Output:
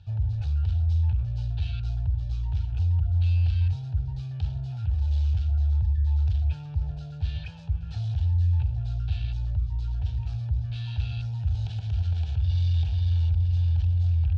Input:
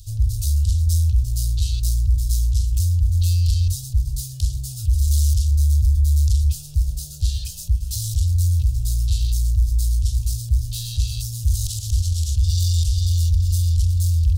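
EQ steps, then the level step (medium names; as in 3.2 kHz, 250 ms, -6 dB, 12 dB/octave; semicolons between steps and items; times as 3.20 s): cabinet simulation 110–2600 Hz, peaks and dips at 160 Hz +6 dB, 280 Hz +8 dB, 420 Hz +6 dB, 870 Hz +6 dB, 2.3 kHz +8 dB; high-order bell 1.1 kHz +11 dB; +1.0 dB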